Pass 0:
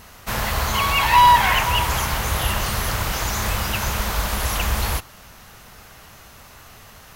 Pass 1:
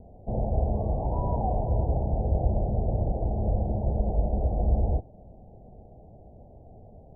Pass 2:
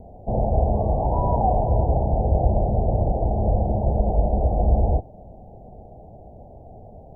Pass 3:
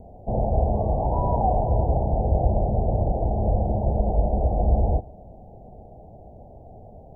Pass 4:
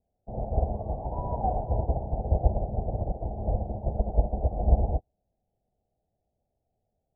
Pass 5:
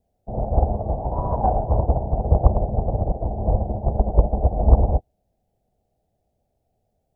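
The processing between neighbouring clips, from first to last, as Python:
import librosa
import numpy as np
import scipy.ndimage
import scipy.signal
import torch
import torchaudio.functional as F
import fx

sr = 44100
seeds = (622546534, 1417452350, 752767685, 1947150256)

y1 = scipy.signal.sosfilt(scipy.signal.butter(12, 750.0, 'lowpass', fs=sr, output='sos'), x)
y2 = fx.peak_eq(y1, sr, hz=810.0, db=5.0, octaves=1.1)
y2 = y2 * 10.0 ** (5.0 / 20.0)
y3 = y2 + 10.0 ** (-23.5 / 20.0) * np.pad(y2, (int(138 * sr / 1000.0), 0))[:len(y2)]
y3 = y3 * 10.0 ** (-1.5 / 20.0)
y4 = fx.upward_expand(y3, sr, threshold_db=-39.0, expansion=2.5)
y4 = y4 * 10.0 ** (1.5 / 20.0)
y5 = fx.doppler_dist(y4, sr, depth_ms=0.89)
y5 = y5 * 10.0 ** (7.5 / 20.0)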